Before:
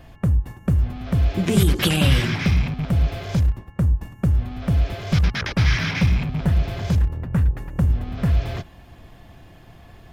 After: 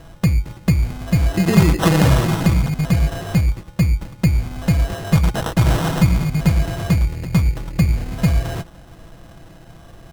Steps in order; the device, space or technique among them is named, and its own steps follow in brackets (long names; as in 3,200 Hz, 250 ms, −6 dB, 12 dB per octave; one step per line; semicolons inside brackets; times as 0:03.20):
comb filter 6.1 ms, depth 39%
crushed at another speed (tape speed factor 0.8×; decimation without filtering 24×; tape speed factor 1.25×)
level +3.5 dB